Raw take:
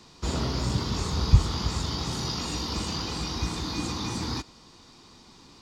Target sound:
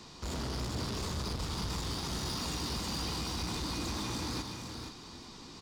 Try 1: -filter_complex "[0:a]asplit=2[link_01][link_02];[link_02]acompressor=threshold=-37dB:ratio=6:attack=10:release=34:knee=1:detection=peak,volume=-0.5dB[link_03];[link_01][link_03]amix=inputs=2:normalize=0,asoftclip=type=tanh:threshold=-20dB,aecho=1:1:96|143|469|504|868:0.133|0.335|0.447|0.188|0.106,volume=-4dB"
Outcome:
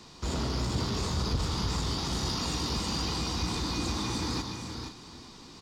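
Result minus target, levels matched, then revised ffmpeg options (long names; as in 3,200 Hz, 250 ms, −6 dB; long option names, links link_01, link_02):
soft clipping: distortion −4 dB
-filter_complex "[0:a]asplit=2[link_01][link_02];[link_02]acompressor=threshold=-37dB:ratio=6:attack=10:release=34:knee=1:detection=peak,volume=-0.5dB[link_03];[link_01][link_03]amix=inputs=2:normalize=0,asoftclip=type=tanh:threshold=-30.5dB,aecho=1:1:96|143|469|504|868:0.133|0.335|0.447|0.188|0.106,volume=-4dB"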